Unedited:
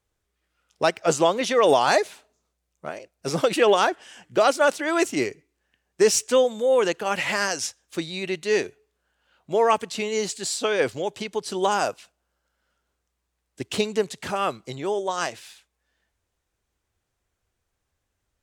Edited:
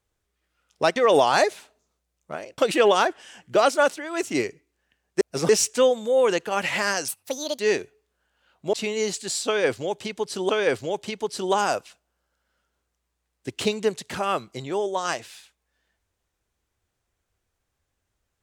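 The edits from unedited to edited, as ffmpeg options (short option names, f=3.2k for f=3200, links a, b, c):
-filter_complex "[0:a]asplit=11[a][b][c][d][e][f][g][h][i][j][k];[a]atrim=end=0.962[l];[b]atrim=start=1.498:end=3.122[m];[c]atrim=start=3.398:end=4.9,asetpts=PTS-STARTPTS,afade=t=out:st=1.252:d=0.25:silence=0.298538[n];[d]atrim=start=4.9:end=4.92,asetpts=PTS-STARTPTS,volume=-10.5dB[o];[e]atrim=start=4.92:end=6.032,asetpts=PTS-STARTPTS,afade=t=in:d=0.25:silence=0.298538[p];[f]atrim=start=3.118:end=3.402[q];[g]atrim=start=6.028:end=7.624[r];[h]atrim=start=7.62:end=8.44,asetpts=PTS-STARTPTS,asetrate=70560,aresample=44100,atrim=end_sample=22601,asetpts=PTS-STARTPTS[s];[i]atrim=start=8.436:end=9.582[t];[j]atrim=start=9.888:end=11.652[u];[k]atrim=start=10.618[v];[l][m]acrossfade=d=0.004:c1=hsin:c2=hsin[w];[n][o][p]concat=n=3:v=0:a=1[x];[w][x]acrossfade=d=0.004:c1=hsin:c2=hsin[y];[y][q]acrossfade=d=0.004:c1=hsin:c2=hsin[z];[z][r]acrossfade=d=0.004:c1=hsin:c2=hsin[aa];[aa][s]acrossfade=d=0.004:c1=hsin:c2=hsin[ab];[ab][t]acrossfade=d=0.004:c1=hsin:c2=hsin[ac];[ac][u]acrossfade=d=0.004:c1=hsin:c2=hsin[ad];[ad][v]acrossfade=d=0.004:c1=hsin:c2=hsin"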